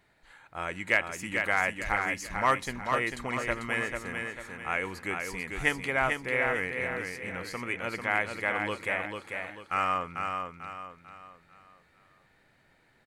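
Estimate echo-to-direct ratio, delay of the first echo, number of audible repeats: −4.5 dB, 444 ms, 4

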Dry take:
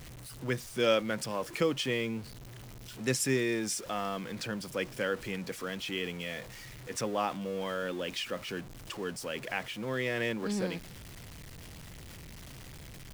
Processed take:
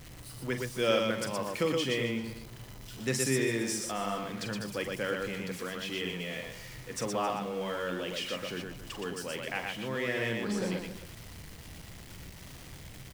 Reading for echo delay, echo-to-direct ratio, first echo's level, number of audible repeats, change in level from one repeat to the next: 44 ms, −2.0 dB, −8.0 dB, 4, repeats not evenly spaced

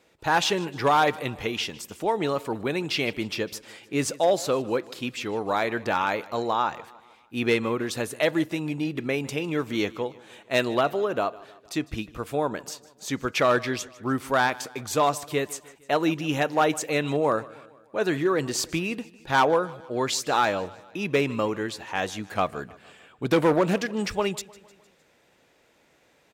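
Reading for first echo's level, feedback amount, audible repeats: −21.0 dB, 54%, 3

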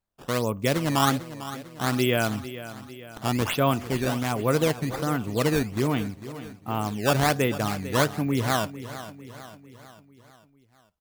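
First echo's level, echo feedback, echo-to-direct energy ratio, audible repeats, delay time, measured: −14.0 dB, 53%, −12.5 dB, 4, 449 ms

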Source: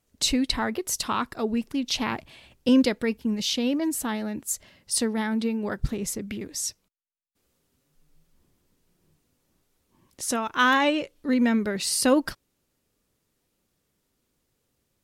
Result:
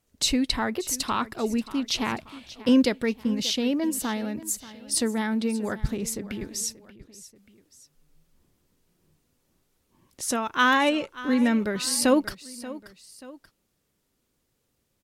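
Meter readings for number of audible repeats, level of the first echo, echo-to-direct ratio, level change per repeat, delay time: 2, −17.0 dB, −16.0 dB, −6.5 dB, 583 ms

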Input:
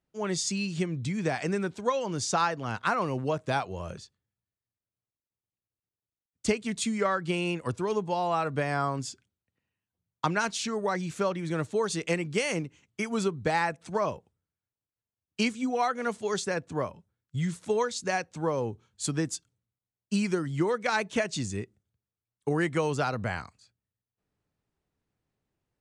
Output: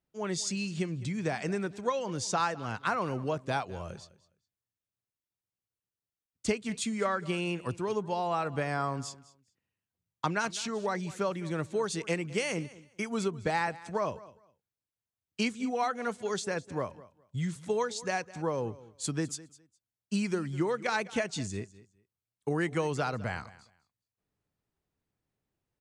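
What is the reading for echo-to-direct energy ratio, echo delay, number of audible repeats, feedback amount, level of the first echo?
−19.0 dB, 206 ms, 2, 19%, −19.0 dB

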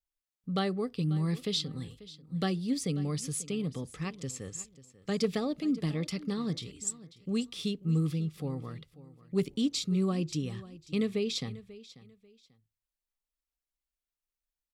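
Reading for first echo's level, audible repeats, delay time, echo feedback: −18.0 dB, 2, 540 ms, 26%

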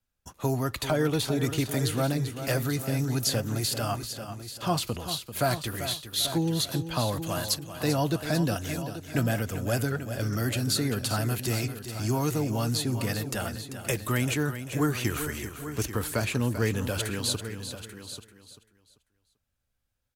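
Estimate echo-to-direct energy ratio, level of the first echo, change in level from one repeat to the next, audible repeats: −8.0 dB, −10.5 dB, repeats not evenly spaced, 6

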